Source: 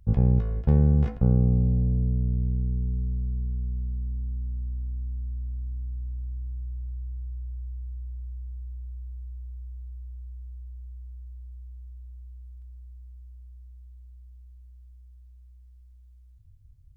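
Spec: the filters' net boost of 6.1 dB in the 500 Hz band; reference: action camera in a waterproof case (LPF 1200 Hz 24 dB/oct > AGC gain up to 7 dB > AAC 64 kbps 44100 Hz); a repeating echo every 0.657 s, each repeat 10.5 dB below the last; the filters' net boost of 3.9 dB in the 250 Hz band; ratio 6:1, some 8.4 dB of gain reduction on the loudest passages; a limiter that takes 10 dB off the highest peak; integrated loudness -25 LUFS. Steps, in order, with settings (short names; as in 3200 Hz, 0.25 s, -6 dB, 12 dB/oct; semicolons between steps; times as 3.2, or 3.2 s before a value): bell 250 Hz +5 dB; bell 500 Hz +5.5 dB; compressor 6:1, threshold -22 dBFS; limiter -21.5 dBFS; LPF 1200 Hz 24 dB/oct; feedback echo 0.657 s, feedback 30%, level -10.5 dB; AGC gain up to 7 dB; gain +9 dB; AAC 64 kbps 44100 Hz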